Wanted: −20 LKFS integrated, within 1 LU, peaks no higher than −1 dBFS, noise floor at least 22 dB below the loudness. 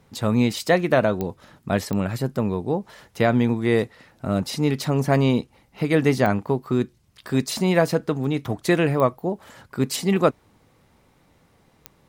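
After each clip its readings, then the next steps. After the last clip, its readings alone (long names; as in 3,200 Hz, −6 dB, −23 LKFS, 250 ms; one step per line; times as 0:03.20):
number of clicks 5; integrated loudness −22.5 LKFS; sample peak −4.5 dBFS; target loudness −20.0 LKFS
→ click removal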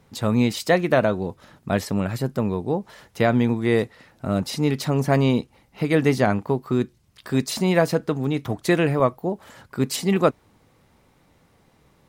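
number of clicks 0; integrated loudness −22.5 LKFS; sample peak −4.5 dBFS; target loudness −20.0 LKFS
→ level +2.5 dB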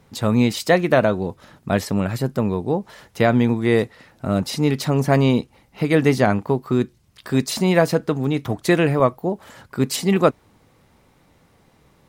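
integrated loudness −20.0 LKFS; sample peak −2.0 dBFS; background noise floor −58 dBFS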